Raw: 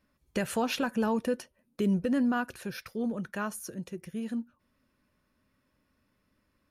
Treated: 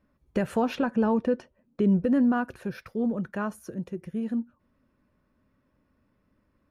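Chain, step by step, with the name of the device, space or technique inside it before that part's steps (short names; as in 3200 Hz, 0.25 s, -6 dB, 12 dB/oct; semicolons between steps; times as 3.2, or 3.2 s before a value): 0.75–1.98 LPF 6500 Hz 12 dB/oct; through cloth (high shelf 2300 Hz -16 dB); gain +5 dB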